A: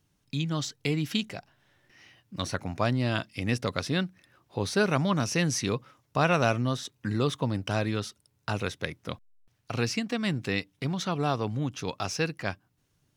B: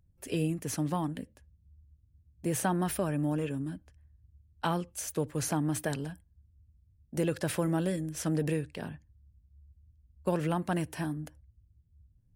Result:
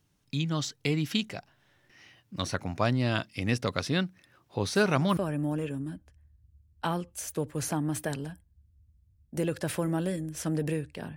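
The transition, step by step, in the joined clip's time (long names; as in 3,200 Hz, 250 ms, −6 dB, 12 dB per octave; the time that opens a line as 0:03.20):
A
0:04.75: mix in B from 0:02.55 0.42 s −14 dB
0:05.17: continue with B from 0:02.97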